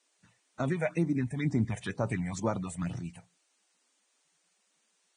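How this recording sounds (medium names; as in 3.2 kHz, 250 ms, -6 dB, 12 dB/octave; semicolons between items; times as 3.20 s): phasing stages 6, 2.1 Hz, lowest notch 300–2900 Hz; a quantiser's noise floor 12-bit, dither triangular; Vorbis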